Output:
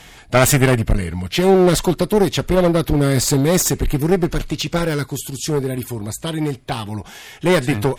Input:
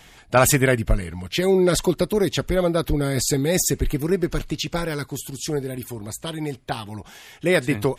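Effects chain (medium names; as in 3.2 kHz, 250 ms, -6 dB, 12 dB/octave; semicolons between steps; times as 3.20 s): harmonic-percussive split harmonic +4 dB; one-sided clip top -21 dBFS; trim +4 dB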